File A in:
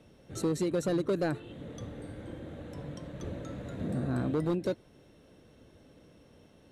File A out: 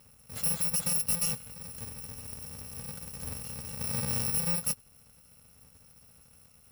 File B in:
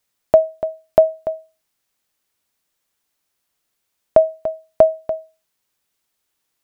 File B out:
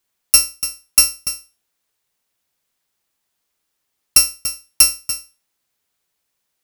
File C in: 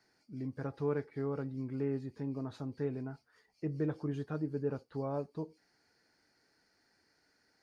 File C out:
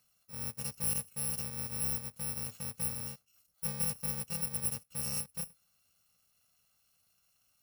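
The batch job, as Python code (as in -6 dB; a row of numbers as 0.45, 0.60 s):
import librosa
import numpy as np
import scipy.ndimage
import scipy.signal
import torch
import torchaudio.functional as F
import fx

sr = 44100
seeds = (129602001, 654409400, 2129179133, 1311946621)

y = fx.bit_reversed(x, sr, seeds[0], block=128)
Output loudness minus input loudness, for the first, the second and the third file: +3.5, +4.0, +3.5 LU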